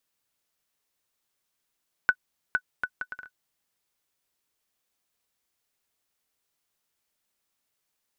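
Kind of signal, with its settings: bouncing ball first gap 0.46 s, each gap 0.62, 1490 Hz, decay 63 ms -9 dBFS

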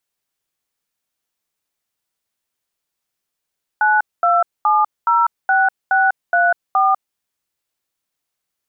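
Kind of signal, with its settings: DTMF "92706634", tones 0.197 s, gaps 0.223 s, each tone -14 dBFS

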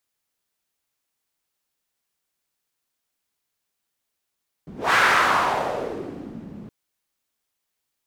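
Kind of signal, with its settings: whoosh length 2.02 s, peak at 0.27, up 0.21 s, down 1.69 s, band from 200 Hz, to 1500 Hz, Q 2.4, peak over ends 22.5 dB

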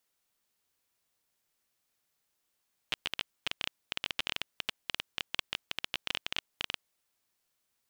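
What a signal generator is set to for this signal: random clicks 15/s -13.5 dBFS 3.98 s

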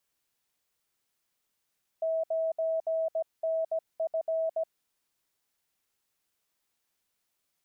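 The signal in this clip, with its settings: Morse "9NF" 17 wpm 648 Hz -26 dBFS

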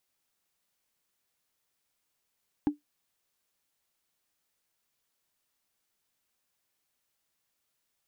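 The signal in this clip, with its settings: wood hit, lowest mode 294 Hz, decay 0.14 s, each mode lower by 11.5 dB, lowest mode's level -18 dB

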